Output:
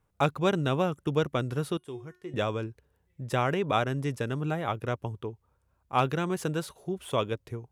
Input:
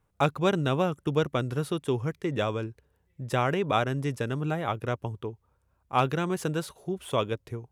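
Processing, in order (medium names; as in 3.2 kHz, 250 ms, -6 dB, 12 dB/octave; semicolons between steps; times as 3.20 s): 1.77–2.34 s: feedback comb 360 Hz, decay 0.37 s, harmonics all, mix 80%; trim -1 dB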